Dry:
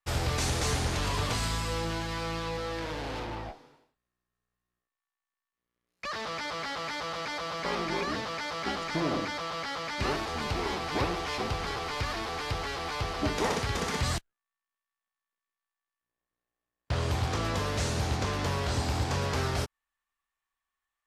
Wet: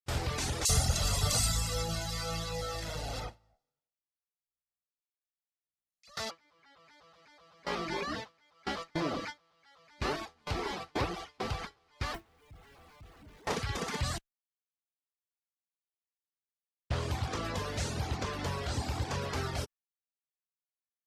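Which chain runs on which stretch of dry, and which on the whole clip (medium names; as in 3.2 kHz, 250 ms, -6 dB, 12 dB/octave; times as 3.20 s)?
0.65–6.31 s: tone controls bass +3 dB, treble +12 dB + comb 1.5 ms, depth 62% + bands offset in time highs, lows 40 ms, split 2.4 kHz
12.14–13.47 s: one-bit comparator + tone controls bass +9 dB, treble -8 dB
whole clip: gate with hold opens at -22 dBFS; reverb removal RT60 0.96 s; trim -2.5 dB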